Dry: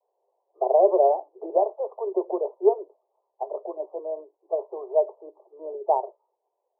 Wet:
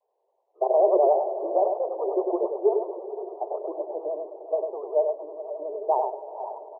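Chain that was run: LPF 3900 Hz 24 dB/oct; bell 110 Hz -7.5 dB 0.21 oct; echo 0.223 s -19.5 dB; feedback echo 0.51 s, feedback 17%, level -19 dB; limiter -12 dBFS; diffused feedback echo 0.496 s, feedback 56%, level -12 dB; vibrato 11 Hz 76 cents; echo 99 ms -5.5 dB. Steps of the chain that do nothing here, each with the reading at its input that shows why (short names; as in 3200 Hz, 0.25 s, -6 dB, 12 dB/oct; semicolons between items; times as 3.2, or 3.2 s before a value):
LPF 3900 Hz: input band ends at 1000 Hz; bell 110 Hz: input band starts at 300 Hz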